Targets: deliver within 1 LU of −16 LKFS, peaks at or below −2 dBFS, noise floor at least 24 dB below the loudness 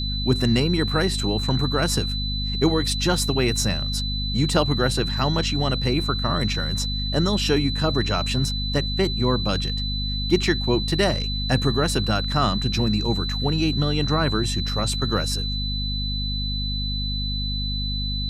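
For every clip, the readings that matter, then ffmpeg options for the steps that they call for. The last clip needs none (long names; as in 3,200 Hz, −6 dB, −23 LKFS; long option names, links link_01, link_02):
mains hum 50 Hz; hum harmonics up to 250 Hz; level of the hum −25 dBFS; interfering tone 4,000 Hz; level of the tone −28 dBFS; integrated loudness −22.5 LKFS; sample peak −6.0 dBFS; target loudness −16.0 LKFS
→ -af "bandreject=frequency=50:width_type=h:width=4,bandreject=frequency=100:width_type=h:width=4,bandreject=frequency=150:width_type=h:width=4,bandreject=frequency=200:width_type=h:width=4,bandreject=frequency=250:width_type=h:width=4"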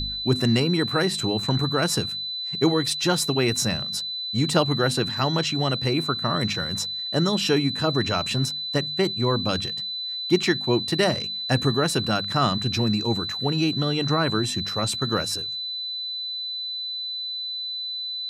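mains hum none found; interfering tone 4,000 Hz; level of the tone −28 dBFS
→ -af "bandreject=frequency=4000:width=30"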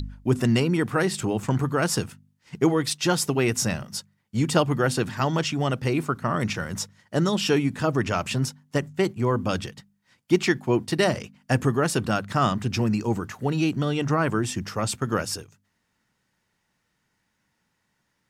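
interfering tone none found; integrated loudness −25.0 LKFS; sample peak −7.0 dBFS; target loudness −16.0 LKFS
→ -af "volume=9dB,alimiter=limit=-2dB:level=0:latency=1"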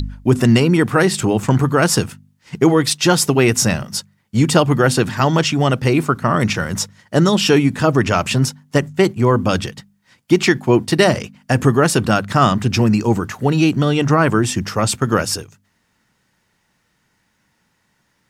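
integrated loudness −16.0 LKFS; sample peak −2.0 dBFS; background noise floor −65 dBFS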